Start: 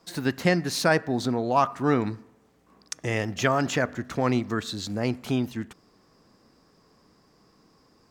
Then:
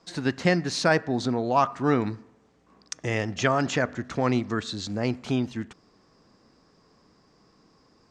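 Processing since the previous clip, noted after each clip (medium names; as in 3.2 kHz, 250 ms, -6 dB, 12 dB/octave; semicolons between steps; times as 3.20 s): low-pass 7.7 kHz 24 dB/octave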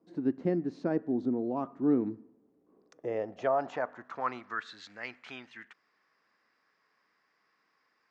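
band-pass sweep 300 Hz -> 1.9 kHz, 2.46–4.90 s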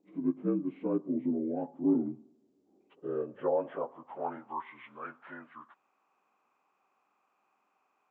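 frequency axis rescaled in octaves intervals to 77%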